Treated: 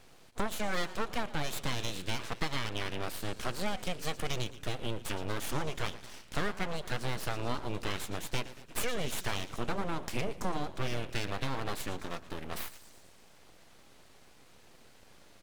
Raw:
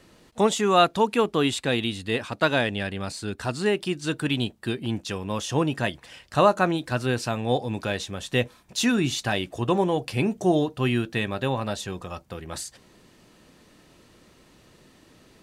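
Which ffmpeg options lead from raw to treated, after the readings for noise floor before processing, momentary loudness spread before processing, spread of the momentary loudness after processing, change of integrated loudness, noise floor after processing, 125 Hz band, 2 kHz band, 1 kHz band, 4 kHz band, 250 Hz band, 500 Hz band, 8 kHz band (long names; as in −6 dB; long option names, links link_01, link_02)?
−56 dBFS, 11 LU, 5 LU, −11.5 dB, −57 dBFS, −10.0 dB, −9.0 dB, −11.5 dB, −8.5 dB, −14.0 dB, −14.0 dB, −7.0 dB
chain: -filter_complex "[0:a]acompressor=threshold=-26dB:ratio=6,asplit=7[link_01][link_02][link_03][link_04][link_05][link_06][link_07];[link_02]adelay=115,afreqshift=-53,volume=-16dB[link_08];[link_03]adelay=230,afreqshift=-106,volume=-20.4dB[link_09];[link_04]adelay=345,afreqshift=-159,volume=-24.9dB[link_10];[link_05]adelay=460,afreqshift=-212,volume=-29.3dB[link_11];[link_06]adelay=575,afreqshift=-265,volume=-33.7dB[link_12];[link_07]adelay=690,afreqshift=-318,volume=-38.2dB[link_13];[link_01][link_08][link_09][link_10][link_11][link_12][link_13]amix=inputs=7:normalize=0,aeval=exprs='abs(val(0))':channel_layout=same,volume=-1.5dB"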